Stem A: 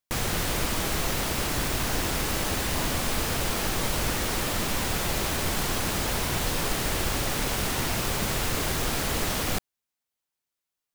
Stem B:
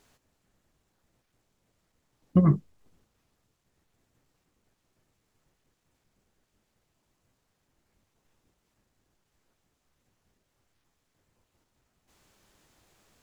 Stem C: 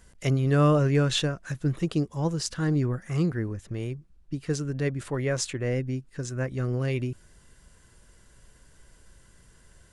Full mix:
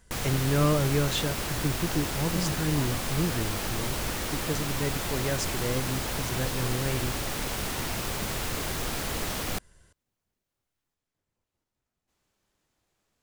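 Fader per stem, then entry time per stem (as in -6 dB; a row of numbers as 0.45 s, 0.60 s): -4.0 dB, -11.5 dB, -3.5 dB; 0.00 s, 0.00 s, 0.00 s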